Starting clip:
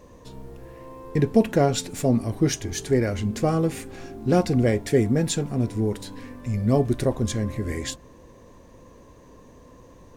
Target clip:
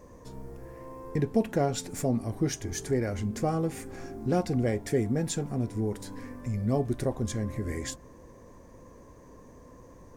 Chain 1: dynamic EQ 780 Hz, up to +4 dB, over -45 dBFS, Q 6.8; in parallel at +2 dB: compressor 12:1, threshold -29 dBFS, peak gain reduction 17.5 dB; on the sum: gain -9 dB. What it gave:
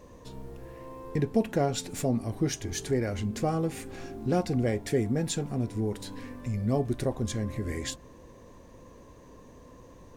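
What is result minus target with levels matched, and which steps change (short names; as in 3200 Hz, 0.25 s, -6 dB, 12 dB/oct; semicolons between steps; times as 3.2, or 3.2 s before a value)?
4000 Hz band +3.0 dB
add after compressor: Butterworth band-stop 3300 Hz, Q 1.7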